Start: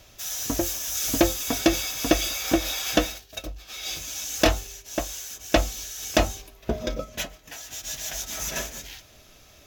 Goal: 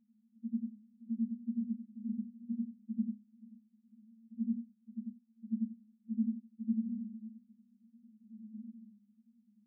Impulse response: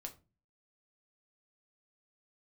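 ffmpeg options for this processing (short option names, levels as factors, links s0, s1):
-af "afftfilt=real='re':imag='-im':win_size=8192:overlap=0.75,asuperpass=centerf=220:order=12:qfactor=5.6,volume=2.51"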